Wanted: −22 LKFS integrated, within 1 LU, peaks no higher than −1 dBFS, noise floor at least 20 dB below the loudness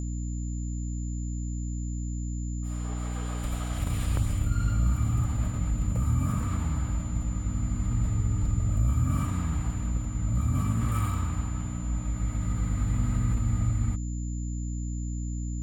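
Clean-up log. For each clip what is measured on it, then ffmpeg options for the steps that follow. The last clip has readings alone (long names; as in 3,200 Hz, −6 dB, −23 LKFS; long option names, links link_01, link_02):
mains hum 60 Hz; hum harmonics up to 300 Hz; level of the hum −29 dBFS; interfering tone 7,100 Hz; level of the tone −47 dBFS; integrated loudness −30.0 LKFS; sample peak −15.0 dBFS; target loudness −22.0 LKFS
→ -af "bandreject=frequency=60:width_type=h:width=6,bandreject=frequency=120:width_type=h:width=6,bandreject=frequency=180:width_type=h:width=6,bandreject=frequency=240:width_type=h:width=6,bandreject=frequency=300:width_type=h:width=6"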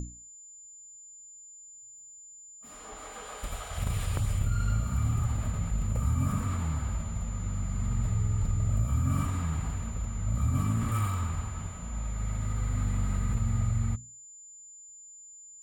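mains hum none found; interfering tone 7,100 Hz; level of the tone −47 dBFS
→ -af "bandreject=frequency=7100:width=30"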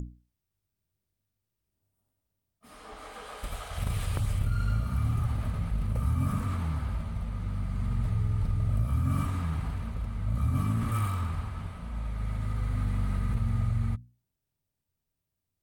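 interfering tone none found; integrated loudness −31.0 LKFS; sample peak −17.0 dBFS; target loudness −22.0 LKFS
→ -af "volume=9dB"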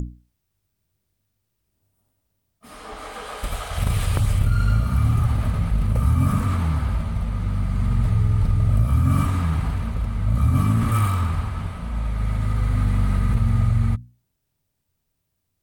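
integrated loudness −22.0 LKFS; sample peak −8.0 dBFS; background noise floor −76 dBFS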